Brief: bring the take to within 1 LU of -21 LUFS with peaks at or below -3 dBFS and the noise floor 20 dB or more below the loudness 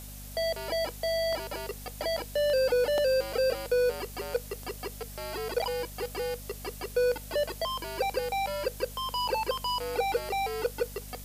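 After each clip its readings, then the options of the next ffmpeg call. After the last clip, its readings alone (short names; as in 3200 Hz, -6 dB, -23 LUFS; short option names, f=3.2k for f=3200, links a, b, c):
hum 50 Hz; harmonics up to 250 Hz; hum level -42 dBFS; noise floor -43 dBFS; noise floor target -51 dBFS; loudness -30.5 LUFS; peak -17.0 dBFS; loudness target -21.0 LUFS
-> -af "bandreject=f=50:t=h:w=6,bandreject=f=100:t=h:w=6,bandreject=f=150:t=h:w=6,bandreject=f=200:t=h:w=6,bandreject=f=250:t=h:w=6"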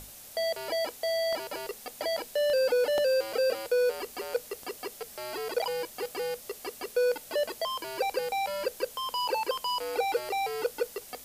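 hum none; noise floor -48 dBFS; noise floor target -51 dBFS
-> -af "afftdn=nr=6:nf=-48"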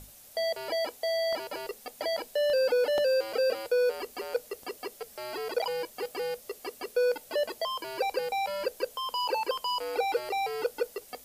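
noise floor -53 dBFS; loudness -31.0 LUFS; peak -17.5 dBFS; loudness target -21.0 LUFS
-> -af "volume=10dB"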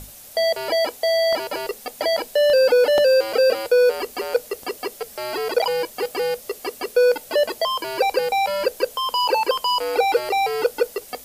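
loudness -21.0 LUFS; peak -7.5 dBFS; noise floor -43 dBFS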